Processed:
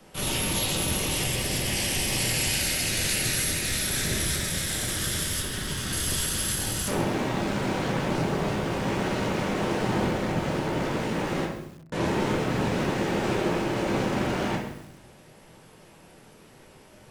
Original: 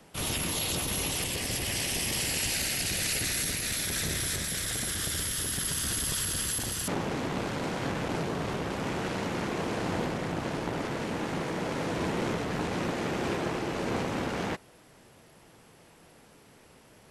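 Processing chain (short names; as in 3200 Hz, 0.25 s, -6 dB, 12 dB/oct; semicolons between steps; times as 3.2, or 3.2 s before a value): 5.4–5.93 LPF 4000 Hz 6 dB/oct; 11.45–11.92 mute; shoebox room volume 140 m³, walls mixed, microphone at 1.1 m; lo-fi delay 0.131 s, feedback 35%, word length 7-bit, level -12 dB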